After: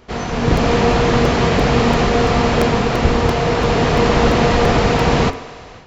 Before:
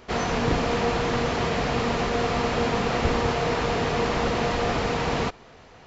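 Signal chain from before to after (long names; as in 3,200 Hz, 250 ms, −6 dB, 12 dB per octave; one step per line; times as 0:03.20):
low-shelf EQ 320 Hz +5 dB
hum removal 89.53 Hz, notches 31
on a send: feedback echo with a high-pass in the loop 72 ms, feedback 83%, high-pass 180 Hz, level −19 dB
on the sum: automatic gain control gain up to 11.5 dB
regular buffer underruns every 0.34 s, samples 128, repeat, from 0:00.57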